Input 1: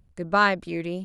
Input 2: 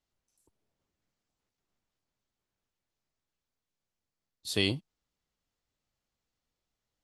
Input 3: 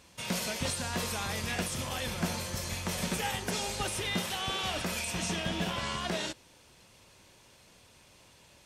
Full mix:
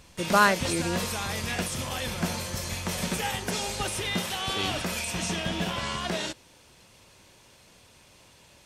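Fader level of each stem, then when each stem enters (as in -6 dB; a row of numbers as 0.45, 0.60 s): -0.5, -5.0, +3.0 dB; 0.00, 0.00, 0.00 s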